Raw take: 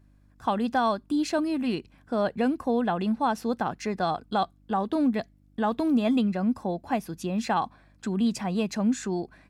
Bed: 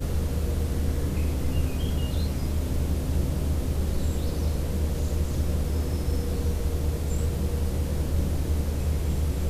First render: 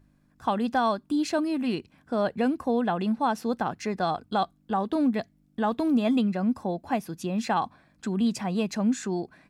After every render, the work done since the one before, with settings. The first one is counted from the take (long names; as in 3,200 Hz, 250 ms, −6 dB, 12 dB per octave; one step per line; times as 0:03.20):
hum removal 50 Hz, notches 2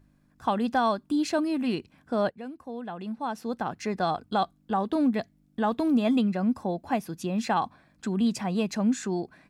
0:02.30–0:03.92: fade in quadratic, from −14.5 dB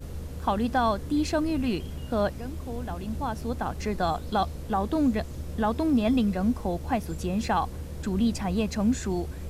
mix in bed −10 dB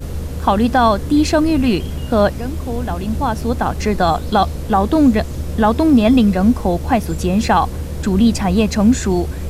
level +12 dB
brickwall limiter −3 dBFS, peak gain reduction 2 dB